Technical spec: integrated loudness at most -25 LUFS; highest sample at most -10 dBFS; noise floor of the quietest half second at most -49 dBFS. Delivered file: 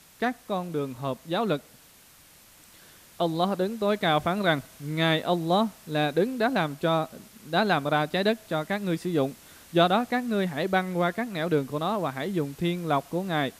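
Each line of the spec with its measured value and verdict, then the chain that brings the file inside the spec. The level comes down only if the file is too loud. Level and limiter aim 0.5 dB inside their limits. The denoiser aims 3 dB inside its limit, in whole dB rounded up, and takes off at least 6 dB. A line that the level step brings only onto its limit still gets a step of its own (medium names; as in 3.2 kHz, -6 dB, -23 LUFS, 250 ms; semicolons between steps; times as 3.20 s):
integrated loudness -27.0 LUFS: pass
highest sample -8.5 dBFS: fail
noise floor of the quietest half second -54 dBFS: pass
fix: peak limiter -10.5 dBFS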